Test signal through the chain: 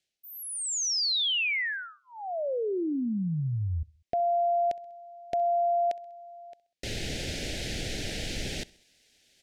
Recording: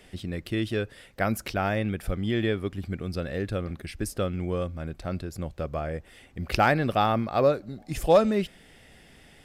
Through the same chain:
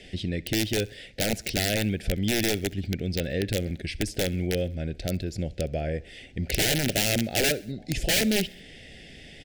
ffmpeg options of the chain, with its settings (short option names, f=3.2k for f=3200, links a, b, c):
-filter_complex "[0:a]lowpass=4.6k,highshelf=f=3.4k:g=8.5,asplit=2[a][b];[b]acompressor=threshold=-34dB:ratio=12,volume=-0.5dB[c];[a][c]amix=inputs=2:normalize=0,aeval=exprs='(mod(6.31*val(0)+1,2)-1)/6.31':c=same,areverse,acompressor=mode=upward:threshold=-42dB:ratio=2.5,areverse,asuperstop=centerf=1100:order=4:qfactor=0.98,aecho=1:1:65|130|195:0.0708|0.0368|0.0191"